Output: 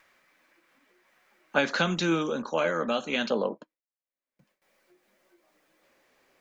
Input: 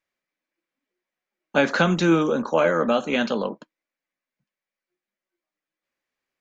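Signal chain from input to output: upward compressor, threshold -41 dBFS; gate with hold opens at -56 dBFS; peaking EQ 1.3 kHz +7.5 dB 2.2 oct, from 1.59 s 4.2 kHz, from 3.30 s 520 Hz; trim -8 dB

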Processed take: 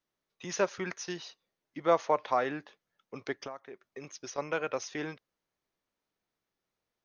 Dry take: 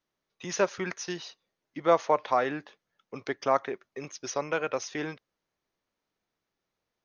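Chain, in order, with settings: 3.39–4.38 s: compression 12:1, threshold -36 dBFS, peak gain reduction 18.5 dB; trim -3 dB

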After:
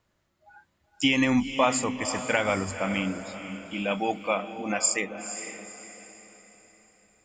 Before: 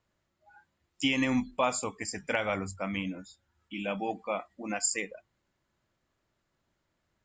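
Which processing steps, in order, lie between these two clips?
3.91–4.35 s: treble shelf 2.7 kHz +10.5 dB; echo that smears into a reverb 494 ms, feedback 41%, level -10 dB; trim +5 dB

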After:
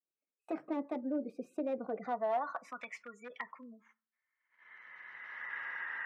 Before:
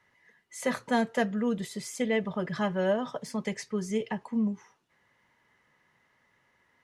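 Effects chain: gliding tape speed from 131% -> 95%; recorder AGC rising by 16 dB/s; dynamic bell 1.2 kHz, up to +3 dB, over -43 dBFS, Q 1; spectral gate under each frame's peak -25 dB strong; wavefolder -20.5 dBFS; band-pass sweep 400 Hz -> 1.7 kHz, 1.81–2.78 s; gate -57 dBFS, range -24 dB; reverberation RT60 0.35 s, pre-delay 3 ms, DRR 19 dB; trim -1 dB

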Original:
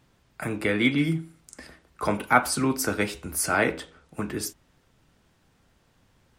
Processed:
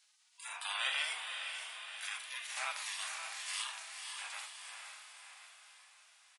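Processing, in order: treble shelf 3.4 kHz -2.5 dB; in parallel at -2 dB: peak limiter -17 dBFS, peak gain reduction 11.5 dB; on the sum: feedback delay 1075 ms, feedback 24%, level -18 dB; spectral gate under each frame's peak -25 dB weak; high-pass 820 Hz 24 dB/octave; on a send: echo that smears into a reverb 511 ms, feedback 48%, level -7.5 dB; on the sum: harmonic-percussive split percussive -13 dB; trim +7 dB; MP3 48 kbps 48 kHz

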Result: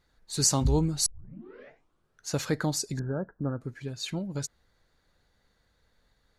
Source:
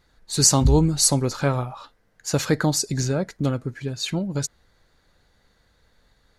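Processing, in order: 1.06 s: tape start 1.27 s; 2.99–3.61 s: Chebyshev low-pass 1.7 kHz, order 8; trim -7.5 dB

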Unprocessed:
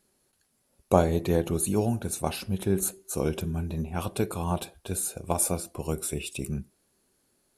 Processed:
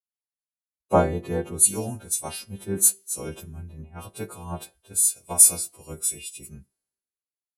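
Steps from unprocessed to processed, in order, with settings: partials quantised in pitch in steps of 2 st; three bands expanded up and down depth 100%; trim -5.5 dB

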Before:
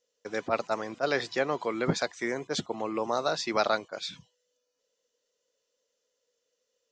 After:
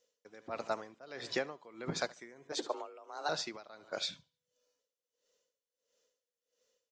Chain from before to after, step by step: 2.52–3.29 s: frequency shift +150 Hz; compression 4:1, threshold -32 dBFS, peak gain reduction 10.5 dB; feedback delay 72 ms, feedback 48%, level -17.5 dB; logarithmic tremolo 1.5 Hz, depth 21 dB; trim +2 dB

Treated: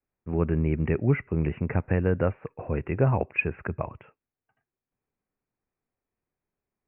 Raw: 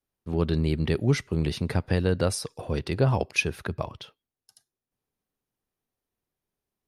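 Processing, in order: steep low-pass 2.6 kHz 96 dB/octave

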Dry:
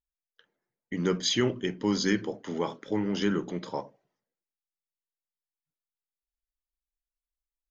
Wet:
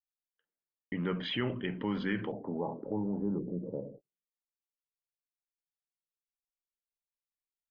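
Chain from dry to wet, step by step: elliptic low-pass 2.9 kHz, stop band 80 dB, from 2.31 s 870 Hz, from 3.38 s 510 Hz; gate -55 dBFS, range -55 dB; dynamic bell 360 Hz, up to -5 dB, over -39 dBFS, Q 1.7; level flattener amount 50%; trim -5 dB

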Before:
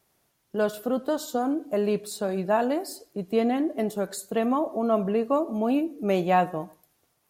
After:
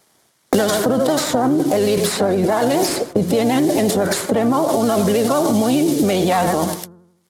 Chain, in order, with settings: CVSD coder 64 kbps; gate -54 dBFS, range -43 dB; high-pass 130 Hz 12 dB/octave; band-stop 2.6 kHz, Q 5.3; de-hum 175.8 Hz, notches 9; in parallel at +1.5 dB: compressor with a negative ratio -36 dBFS, ratio -1; on the sum: harmony voices -12 st -14 dB, +4 st -11 dB; vibrato 12 Hz 66 cents; loudness maximiser +19 dB; three bands compressed up and down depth 100%; trim -8 dB

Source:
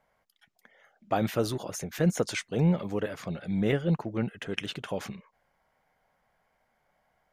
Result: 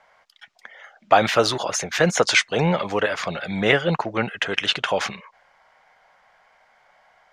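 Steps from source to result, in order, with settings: three-band isolator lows -16 dB, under 600 Hz, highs -23 dB, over 7.1 kHz; loudness maximiser +18 dB; trim -1 dB

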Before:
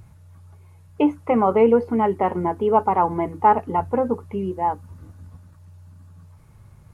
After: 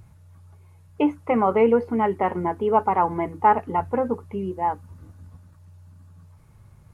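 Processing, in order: dynamic bell 1.9 kHz, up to +5 dB, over -35 dBFS, Q 1.2; trim -2.5 dB

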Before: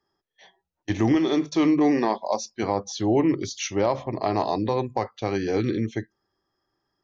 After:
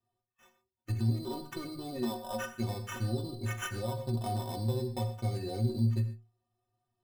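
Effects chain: spectral gate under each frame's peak -25 dB strong; tone controls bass +14 dB, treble +10 dB; compression 10:1, threshold -17 dBFS, peak gain reduction 9 dB; Chebyshev shaper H 6 -23 dB, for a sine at -8 dBFS; sample-rate reducer 4.4 kHz, jitter 0%; inharmonic resonator 110 Hz, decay 0.36 s, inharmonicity 0.03; reverberation, pre-delay 21 ms, DRR 10 dB; trim -2 dB

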